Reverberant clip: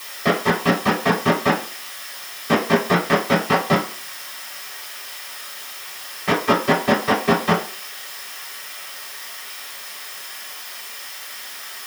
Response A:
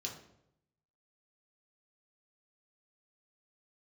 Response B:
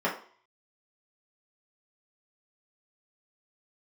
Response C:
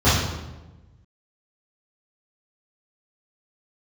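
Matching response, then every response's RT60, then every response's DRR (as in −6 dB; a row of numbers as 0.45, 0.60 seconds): B; 0.80, 0.50, 1.1 seconds; −2.5, −6.5, −14.5 decibels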